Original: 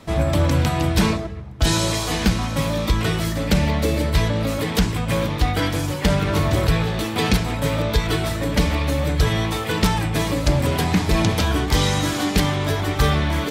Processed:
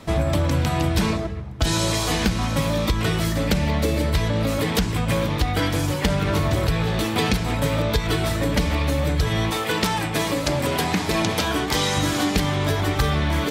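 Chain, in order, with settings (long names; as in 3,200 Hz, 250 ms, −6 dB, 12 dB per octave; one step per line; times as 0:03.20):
0:09.50–0:11.97: high-pass filter 260 Hz 6 dB per octave
downward compressor, threshold −19 dBFS, peak gain reduction 7 dB
level +2 dB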